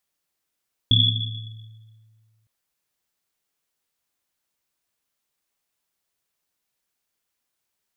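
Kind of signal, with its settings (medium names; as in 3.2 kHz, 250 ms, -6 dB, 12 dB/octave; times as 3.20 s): Risset drum length 1.56 s, pitch 110 Hz, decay 1.96 s, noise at 3.4 kHz, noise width 150 Hz, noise 55%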